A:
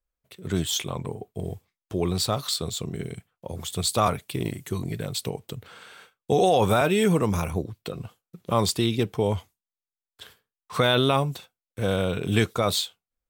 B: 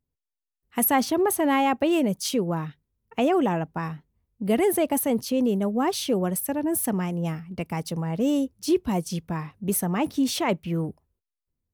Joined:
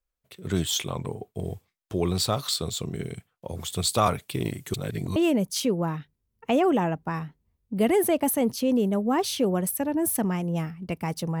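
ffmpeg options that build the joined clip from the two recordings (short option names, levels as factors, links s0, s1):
-filter_complex "[0:a]apad=whole_dur=11.4,atrim=end=11.4,asplit=2[s0][s1];[s0]atrim=end=4.742[s2];[s1]atrim=start=4.738:end=5.162,asetpts=PTS-STARTPTS,areverse[s3];[1:a]atrim=start=1.848:end=8.09[s4];[s2][s3]acrossfade=d=0.004:c1=hsin:c2=hsin[s5];[s5][s4]acrossfade=d=0.004:c1=hsin:c2=hsin"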